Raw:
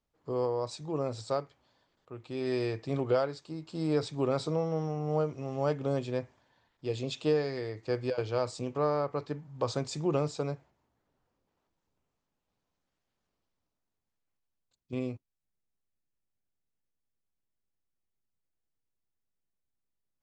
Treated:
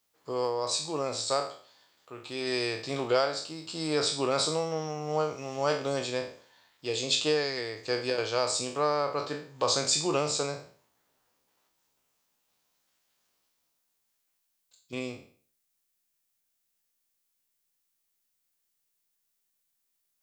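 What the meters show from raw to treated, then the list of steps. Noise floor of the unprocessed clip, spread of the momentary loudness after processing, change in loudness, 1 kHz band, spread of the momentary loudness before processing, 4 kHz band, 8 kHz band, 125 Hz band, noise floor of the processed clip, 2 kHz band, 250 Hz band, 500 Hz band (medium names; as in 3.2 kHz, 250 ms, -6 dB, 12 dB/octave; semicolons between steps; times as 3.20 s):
-84 dBFS, 12 LU, +3.0 dB, +5.0 dB, 10 LU, +14.0 dB, +17.0 dB, -5.5 dB, -78 dBFS, +9.0 dB, -2.0 dB, +1.0 dB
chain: spectral sustain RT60 0.47 s; tilt EQ +3.5 dB/octave; trim +4 dB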